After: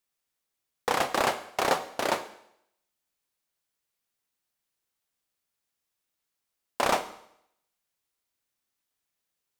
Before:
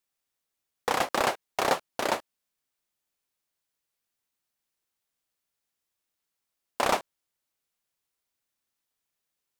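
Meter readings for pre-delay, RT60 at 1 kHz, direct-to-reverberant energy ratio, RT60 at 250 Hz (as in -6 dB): 26 ms, 0.75 s, 10.5 dB, 0.70 s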